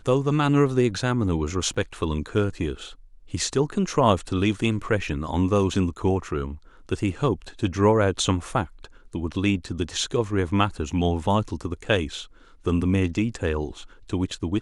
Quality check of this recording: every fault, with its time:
1.74 gap 4.9 ms

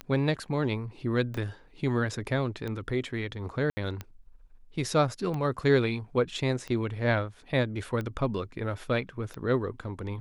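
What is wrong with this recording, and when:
tick 45 rpm -22 dBFS
1.37 gap 4.5 ms
3.7–3.77 gap 70 ms

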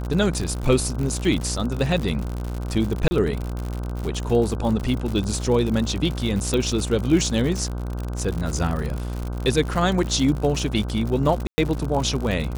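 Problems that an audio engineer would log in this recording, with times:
buzz 60 Hz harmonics 26 -28 dBFS
crackle 83/s -26 dBFS
3.08–3.11 gap 30 ms
6.54 pop -11 dBFS
11.47–11.58 gap 0.11 s

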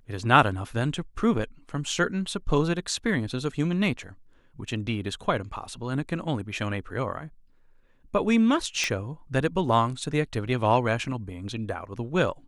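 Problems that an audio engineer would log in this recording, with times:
8.84 pop -12 dBFS

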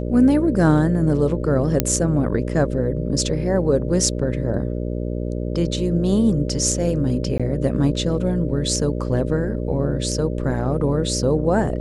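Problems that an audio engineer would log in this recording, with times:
buzz 60 Hz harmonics 10 -25 dBFS
1.8 pop -1 dBFS
7.38–7.4 gap 16 ms

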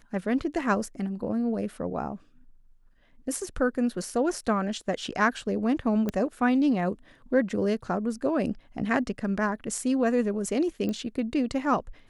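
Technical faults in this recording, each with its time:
6.09 pop -16 dBFS
10.89 pop -20 dBFS

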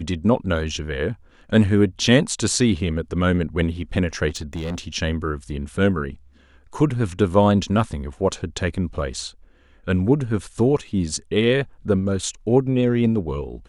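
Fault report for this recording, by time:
4.28–4.8 clipped -24 dBFS

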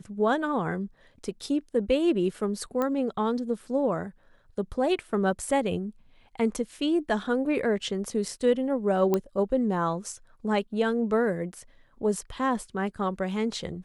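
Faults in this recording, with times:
2.82 pop -16 dBFS
9.14 pop -12 dBFS

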